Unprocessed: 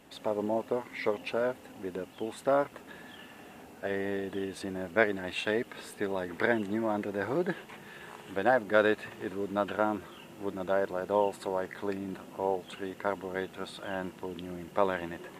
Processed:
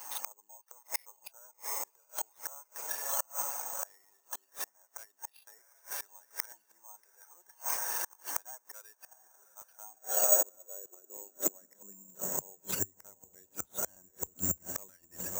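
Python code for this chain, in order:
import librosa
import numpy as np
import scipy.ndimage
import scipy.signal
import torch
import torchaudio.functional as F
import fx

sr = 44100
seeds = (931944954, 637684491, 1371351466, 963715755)

y = scipy.ndimage.median_filter(x, 9, mode='constant')
y = fx.dereverb_blind(y, sr, rt60_s=2.0)
y = fx.low_shelf(y, sr, hz=66.0, db=10.0)
y = fx.notch(y, sr, hz=4700.0, q=7.5)
y = fx.echo_diffused(y, sr, ms=732, feedback_pct=51, wet_db=-14.0)
y = np.clip(y, -10.0 ** (-18.0 / 20.0), 10.0 ** (-18.0 / 20.0))
y = fx.gate_flip(y, sr, shuts_db=-32.0, range_db=-35)
y = fx.filter_sweep_highpass(y, sr, from_hz=940.0, to_hz=69.0, start_s=9.7, end_s=13.34, q=3.5)
y = (np.kron(y[::6], np.eye(6)[0]) * 6)[:len(y)]
y = fx.buffer_crackle(y, sr, first_s=0.31, period_s=0.31, block=256, kind='repeat')
y = y * librosa.db_to_amplitude(4.0)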